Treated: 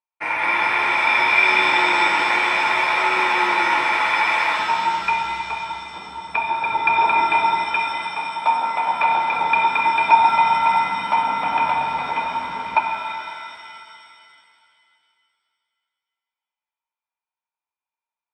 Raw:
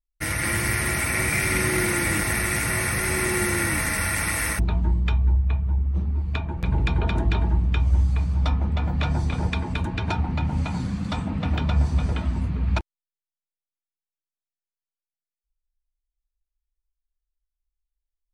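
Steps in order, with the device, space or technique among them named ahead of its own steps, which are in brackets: tin-can telephone (BPF 540–2000 Hz; small resonant body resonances 920/2400 Hz, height 18 dB, ringing for 25 ms); 7.64–9.36 HPF 210 Hz 12 dB/oct; shimmer reverb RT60 2.6 s, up +7 st, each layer -8 dB, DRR 1.5 dB; gain +2.5 dB

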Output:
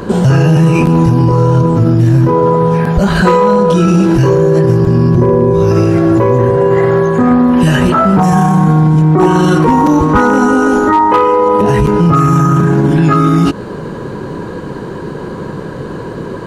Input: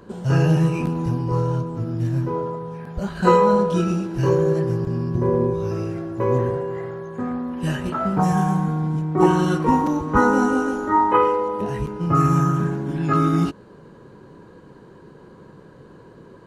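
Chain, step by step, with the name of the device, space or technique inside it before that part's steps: loud club master (compressor 2:1, threshold -23 dBFS, peak gain reduction 7.5 dB; hard clip -15 dBFS, distortion -27 dB; maximiser +23.5 dB); gain -1 dB

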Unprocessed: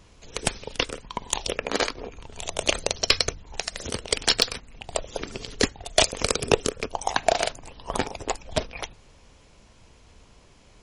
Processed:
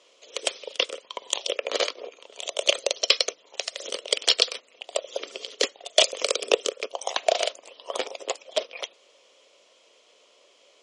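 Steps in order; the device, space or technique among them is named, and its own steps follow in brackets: phone speaker on a table (speaker cabinet 410–8700 Hz, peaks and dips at 560 Hz +7 dB, 850 Hz -9 dB, 1600 Hz -8 dB, 3200 Hz +7 dB); gain -1 dB

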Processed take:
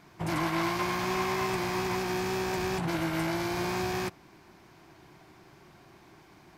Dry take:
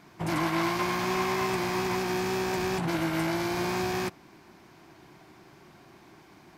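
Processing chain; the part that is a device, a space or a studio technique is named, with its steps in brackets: low shelf boost with a cut just above (low shelf 90 Hz +5.5 dB; bell 240 Hz -3 dB 0.74 oct); gain -1.5 dB

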